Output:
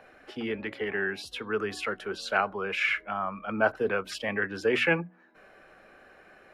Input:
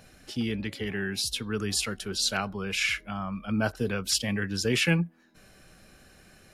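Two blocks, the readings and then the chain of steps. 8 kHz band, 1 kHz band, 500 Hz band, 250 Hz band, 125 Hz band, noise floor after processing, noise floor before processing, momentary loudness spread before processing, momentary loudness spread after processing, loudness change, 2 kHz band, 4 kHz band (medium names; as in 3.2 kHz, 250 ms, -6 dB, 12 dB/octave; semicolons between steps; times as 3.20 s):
-16.5 dB, +6.0 dB, +4.5 dB, -5.0 dB, -10.5 dB, -56 dBFS, -57 dBFS, 8 LU, 9 LU, -1.0 dB, +3.0 dB, -8.0 dB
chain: three-band isolator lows -19 dB, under 340 Hz, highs -24 dB, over 2.3 kHz; hum notches 60/120/180/240/300 Hz; trim +6.5 dB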